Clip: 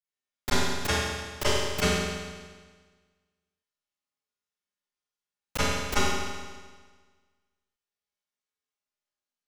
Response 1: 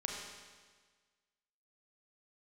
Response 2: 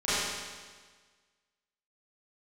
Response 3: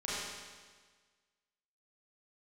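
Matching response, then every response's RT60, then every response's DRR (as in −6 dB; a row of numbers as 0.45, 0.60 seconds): 2; 1.5, 1.5, 1.5 seconds; −1.0, −15.5, −9.0 decibels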